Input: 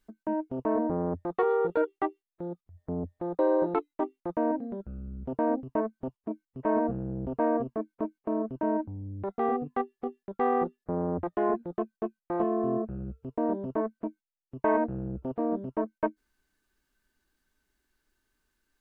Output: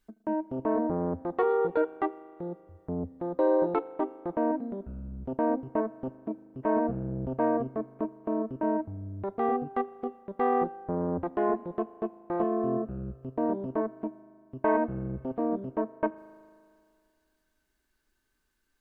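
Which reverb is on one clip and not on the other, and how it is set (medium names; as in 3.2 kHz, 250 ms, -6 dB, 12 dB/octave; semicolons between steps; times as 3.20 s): spring tank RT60 2.2 s, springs 38 ms, chirp 25 ms, DRR 17 dB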